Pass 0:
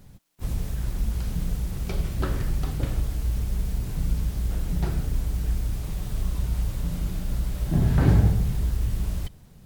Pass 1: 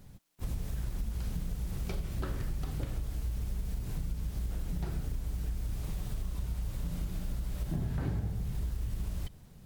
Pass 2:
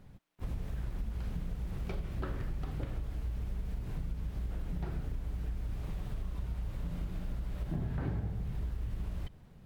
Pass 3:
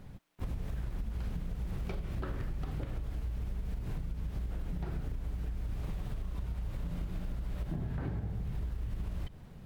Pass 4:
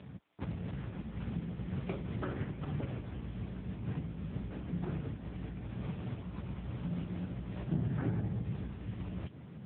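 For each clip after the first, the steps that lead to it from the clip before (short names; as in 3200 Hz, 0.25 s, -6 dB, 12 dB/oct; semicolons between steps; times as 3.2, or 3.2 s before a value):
compressor 6:1, threshold -27 dBFS, peak gain reduction 13.5 dB; gain -3.5 dB
tone controls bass -2 dB, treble -13 dB
compressor, threshold -38 dBFS, peak gain reduction 8 dB; gain +5.5 dB
gain +5.5 dB; AMR-NB 6.7 kbps 8000 Hz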